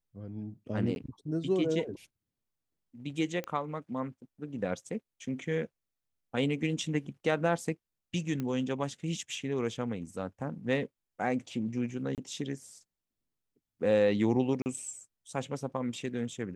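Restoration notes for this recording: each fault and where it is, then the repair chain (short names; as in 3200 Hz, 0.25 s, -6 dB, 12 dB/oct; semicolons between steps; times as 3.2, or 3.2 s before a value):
0.95–0.96 gap 11 ms
3.44 pop -23 dBFS
8.4 pop -22 dBFS
12.15–12.18 gap 28 ms
14.62–14.66 gap 39 ms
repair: de-click; interpolate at 0.95, 11 ms; interpolate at 12.15, 28 ms; interpolate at 14.62, 39 ms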